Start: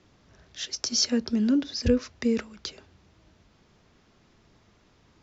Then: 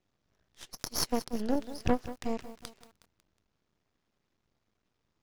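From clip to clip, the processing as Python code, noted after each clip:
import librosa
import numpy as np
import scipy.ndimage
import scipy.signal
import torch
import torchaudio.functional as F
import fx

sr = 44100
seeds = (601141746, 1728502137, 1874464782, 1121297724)

y = fx.cheby_harmonics(x, sr, harmonics=(4, 6, 7), levels_db=(-31, -36, -19), full_scale_db=-9.5)
y = np.maximum(y, 0.0)
y = fx.echo_crushed(y, sr, ms=183, feedback_pct=55, bits=7, wet_db=-14)
y = y * 10.0 ** (-1.5 / 20.0)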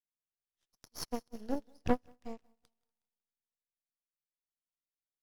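y = fx.echo_heads(x, sr, ms=80, heads='all three', feedback_pct=55, wet_db=-24.0)
y = fx.upward_expand(y, sr, threshold_db=-45.0, expansion=2.5)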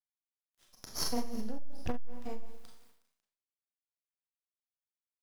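y = fx.law_mismatch(x, sr, coded='mu')
y = fx.rev_schroeder(y, sr, rt60_s=0.49, comb_ms=29, drr_db=0.0)
y = fx.transformer_sat(y, sr, knee_hz=93.0)
y = y * 10.0 ** (5.5 / 20.0)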